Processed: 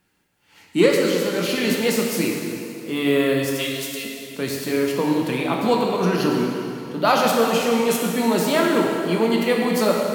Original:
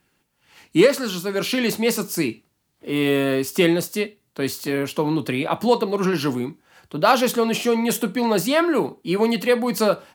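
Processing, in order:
0:03.55–0:04.05: inverse Chebyshev high-pass filter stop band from 1,200 Hz, stop band 40 dB
dense smooth reverb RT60 2.8 s, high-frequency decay 0.85×, DRR −1 dB
level −2.5 dB

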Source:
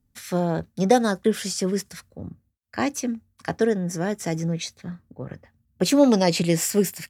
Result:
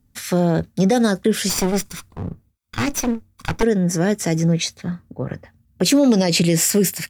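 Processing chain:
0:01.49–0:03.63: lower of the sound and its delayed copy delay 0.84 ms
dynamic equaliser 960 Hz, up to −6 dB, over −36 dBFS, Q 1.2
brickwall limiter −16 dBFS, peak gain reduction 10 dB
level +8.5 dB

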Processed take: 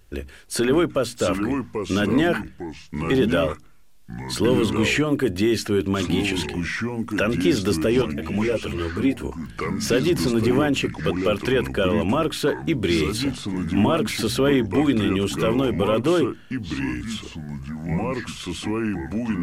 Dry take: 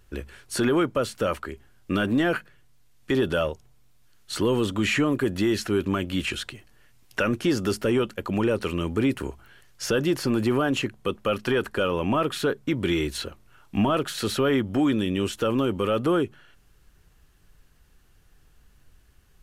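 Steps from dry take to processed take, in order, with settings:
parametric band 1,200 Hz −4 dB 0.95 octaves
mains-hum notches 60/120/180/240/300 Hz
delay with pitch and tempo change per echo 538 ms, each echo −4 semitones, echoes 2, each echo −6 dB
0:08.02–0:09.24: string-ensemble chorus
level +3.5 dB

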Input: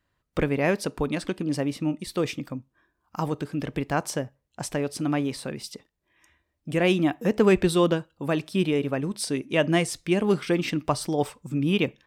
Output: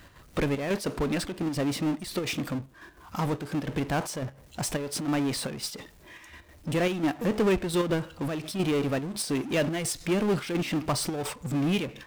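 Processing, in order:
gate pattern "x.xxxxx.." 192 BPM −12 dB
power curve on the samples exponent 0.5
level −8.5 dB

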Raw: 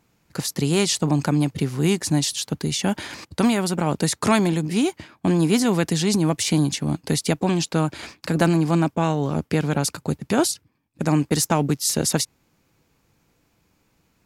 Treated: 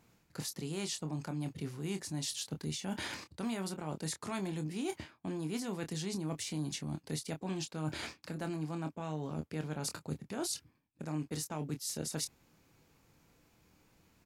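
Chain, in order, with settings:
reversed playback
downward compressor 6 to 1, threshold −34 dBFS, peak gain reduction 19.5 dB
reversed playback
double-tracking delay 26 ms −8 dB
level −3 dB

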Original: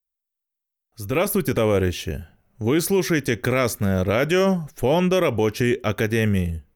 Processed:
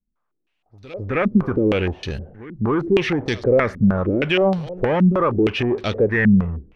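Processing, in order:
echo ahead of the sound 263 ms −23.5 dB
power curve on the samples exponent 0.7
low-pass on a step sequencer 6.4 Hz 220–4,200 Hz
level −4 dB

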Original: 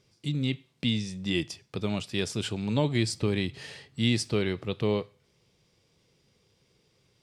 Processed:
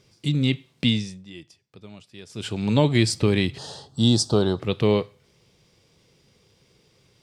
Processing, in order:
0:00.86–0:02.68: duck −20.5 dB, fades 0.40 s
0:03.58–0:04.60: drawn EQ curve 470 Hz 0 dB, 800 Hz +8 dB, 1,500 Hz −3 dB, 2,200 Hz −28 dB, 3,500 Hz +1 dB, 7,900 Hz +3 dB, 11,000 Hz −5 dB
level +7 dB

